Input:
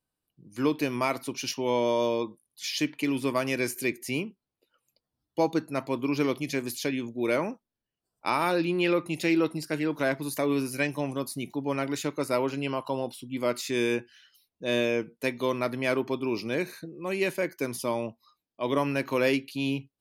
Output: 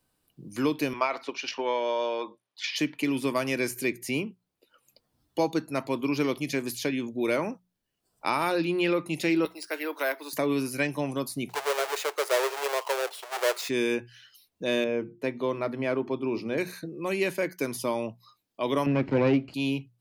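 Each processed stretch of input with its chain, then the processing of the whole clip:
0.93–2.76 s: transient shaper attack +9 dB, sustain +5 dB + high-pass 560 Hz + distance through air 190 m
9.45–10.33 s: Bessel high-pass 570 Hz, order 8 + careless resampling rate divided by 3×, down filtered, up hold
11.49–13.69 s: square wave that keeps the level + elliptic high-pass 410 Hz
14.84–16.58 s: low-pass 1.1 kHz 6 dB/octave + hum notches 50/100/150/200/250/300/350 Hz
18.86–19.54 s: comb filter that takes the minimum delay 0.41 ms + band-pass 130–4500 Hz + tilt EQ -4 dB/octave
whole clip: hum notches 60/120/180 Hz; three bands compressed up and down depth 40%

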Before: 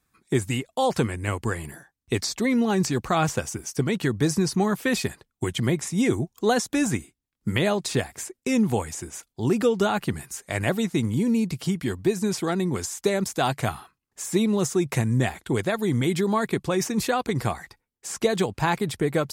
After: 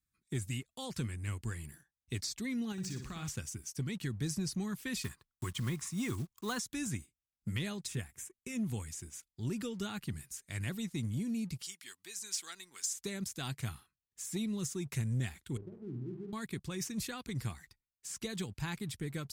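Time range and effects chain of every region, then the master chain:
2.72–3.28 s: median filter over 3 samples + compression 2:1, threshold -28 dBFS + flutter echo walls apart 10 m, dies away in 0.51 s
5.04–6.60 s: block-companded coder 5-bit + peaking EQ 1.1 kHz +14 dB 0.67 oct
7.87–8.67 s: peaking EQ 4.4 kHz -14 dB 0.51 oct + band-stop 270 Hz, Q 9
11.62–12.93 s: high-pass 930 Hz + dynamic bell 6.6 kHz, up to +8 dB, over -46 dBFS, Q 0.82 + upward compressor, threshold -41 dBFS
15.57–16.33 s: four-pole ladder low-pass 460 Hz, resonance 50% + flutter echo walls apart 8.2 m, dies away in 0.47 s
whole clip: amplifier tone stack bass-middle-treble 6-0-2; waveshaping leveller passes 1; trim +1.5 dB

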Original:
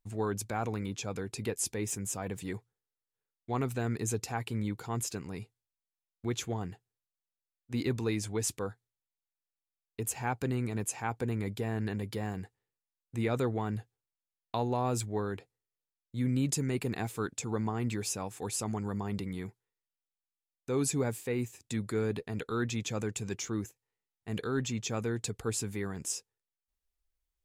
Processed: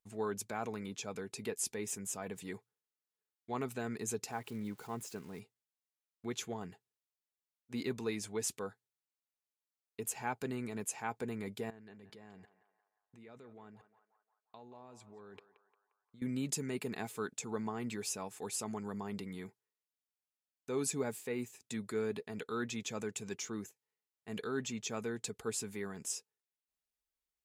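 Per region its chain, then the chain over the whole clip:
4.31–5.40 s: zero-crossing glitches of -36.5 dBFS + treble shelf 2.9 kHz -11 dB
11.70–16.22 s: level held to a coarse grid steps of 24 dB + distance through air 57 m + band-passed feedback delay 176 ms, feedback 60%, band-pass 1.1 kHz, level -10.5 dB
whole clip: high-pass 130 Hz 6 dB/octave; bass shelf 190 Hz -4.5 dB; comb 4.7 ms, depth 31%; trim -4 dB

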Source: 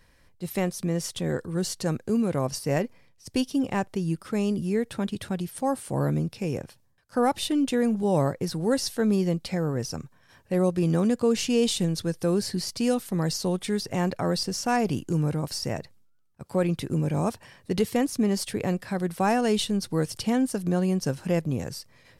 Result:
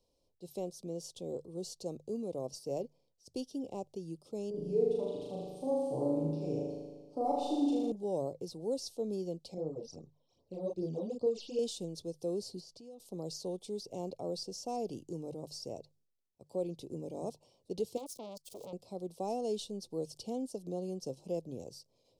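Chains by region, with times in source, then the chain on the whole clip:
4.50–7.92 s: low-pass 2.1 kHz 6 dB/octave + comb 6.9 ms, depth 84% + flutter echo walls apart 6.6 m, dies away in 1.4 s
9.54–11.59 s: low-pass 6 kHz + doubling 32 ms -3.5 dB + phase shifter stages 12, 2.5 Hz, lowest notch 110–2900 Hz
12.60–13.00 s: treble shelf 7.2 kHz -10.5 dB + compression 5:1, threshold -37 dBFS
17.97–18.73 s: zero-crossing glitches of -25.5 dBFS + transformer saturation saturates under 2.1 kHz
whole clip: Chebyshev band-stop 360–7200 Hz, order 2; three-band isolator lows -23 dB, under 550 Hz, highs -23 dB, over 4.1 kHz; hum notches 50/100/150 Hz; trim +4 dB

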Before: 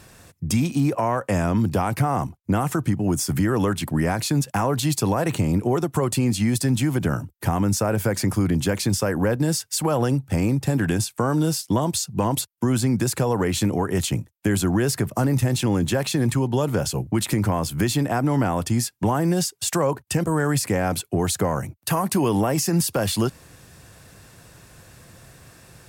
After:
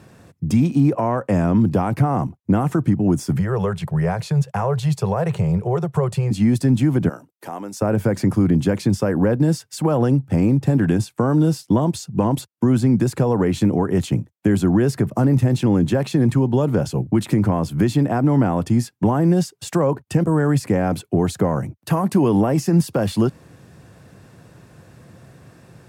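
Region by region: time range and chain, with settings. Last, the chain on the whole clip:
3.36–6.31 s: Chebyshev band-stop 170–430 Hz + treble shelf 12 kHz -6.5 dB
7.09–7.82 s: high-pass 570 Hz + peaking EQ 1.4 kHz -6 dB 2.6 oct
whole clip: high-pass 150 Hz 12 dB/octave; tilt EQ -3 dB/octave

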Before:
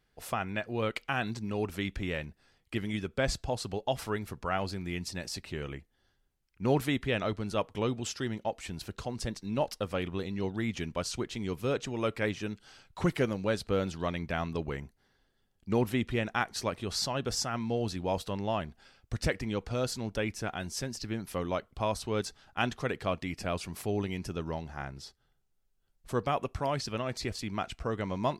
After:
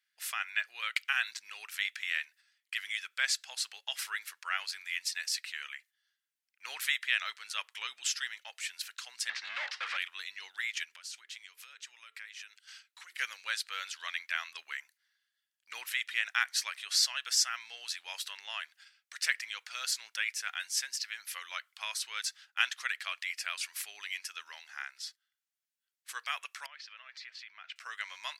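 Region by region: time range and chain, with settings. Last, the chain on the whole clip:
9.29–9.97 s: overdrive pedal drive 37 dB, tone 3.3 kHz, clips at -18 dBFS + tape spacing loss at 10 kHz 31 dB
10.83–13.19 s: steep high-pass 230 Hz + hum notches 50/100/150/200/250/300/350/400/450 Hz + compression 5:1, threshold -46 dBFS
26.66–27.76 s: compression 12:1, threshold -37 dBFS + distance through air 250 m
whole clip: gate -55 dBFS, range -9 dB; Chebyshev high-pass 1.7 kHz, order 3; trim +6.5 dB

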